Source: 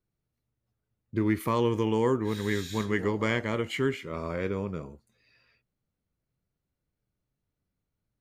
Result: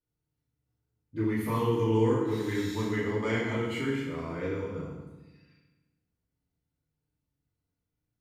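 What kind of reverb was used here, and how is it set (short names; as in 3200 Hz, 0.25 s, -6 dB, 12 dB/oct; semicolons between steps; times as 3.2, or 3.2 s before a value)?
FDN reverb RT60 1.1 s, low-frequency decay 1.45×, high-frequency decay 0.85×, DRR -8.5 dB; gain -11.5 dB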